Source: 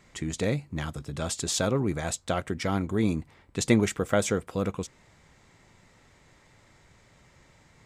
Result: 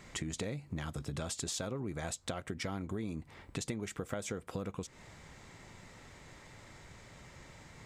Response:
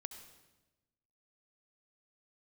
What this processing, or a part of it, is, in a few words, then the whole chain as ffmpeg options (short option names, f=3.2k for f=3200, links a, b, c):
serial compression, peaks first: -af "acompressor=threshold=-34dB:ratio=6,acompressor=threshold=-44dB:ratio=2,volume=4.5dB"